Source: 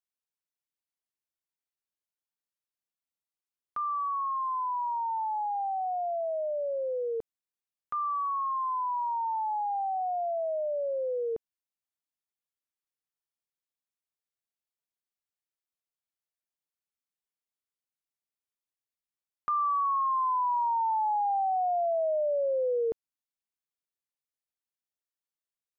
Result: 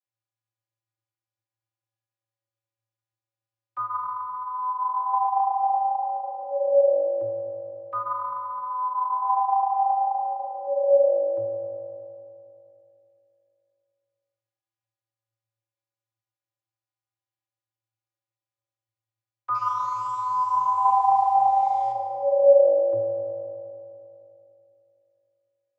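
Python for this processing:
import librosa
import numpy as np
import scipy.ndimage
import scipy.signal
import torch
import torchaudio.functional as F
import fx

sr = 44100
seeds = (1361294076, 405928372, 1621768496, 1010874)

y = fx.delta_mod(x, sr, bps=64000, step_db=-42.5, at=(19.54, 21.92))
y = fx.peak_eq(y, sr, hz=320.0, db=-6.5, octaves=1.4)
y = fx.rev_fdn(y, sr, rt60_s=2.9, lf_ratio=1.0, hf_ratio=0.55, size_ms=11.0, drr_db=0.0)
y = fx.vocoder(y, sr, bands=32, carrier='square', carrier_hz=112.0)
y = y * 10.0 ** (5.5 / 20.0)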